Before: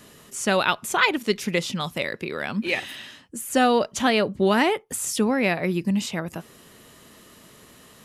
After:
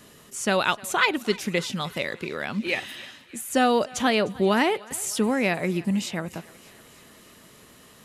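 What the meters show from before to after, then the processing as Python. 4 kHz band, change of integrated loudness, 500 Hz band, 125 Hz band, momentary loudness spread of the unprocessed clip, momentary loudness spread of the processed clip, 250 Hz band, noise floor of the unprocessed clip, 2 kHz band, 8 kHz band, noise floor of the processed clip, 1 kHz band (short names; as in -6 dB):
-1.5 dB, -1.5 dB, -1.5 dB, -1.5 dB, 14 LU, 14 LU, -1.5 dB, -51 dBFS, -1.5 dB, -1.5 dB, -52 dBFS, -1.5 dB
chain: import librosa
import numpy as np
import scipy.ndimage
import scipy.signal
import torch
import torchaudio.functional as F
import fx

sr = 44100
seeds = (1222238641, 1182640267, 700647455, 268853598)

y = fx.echo_thinned(x, sr, ms=304, feedback_pct=70, hz=530.0, wet_db=-20.5)
y = y * librosa.db_to_amplitude(-1.5)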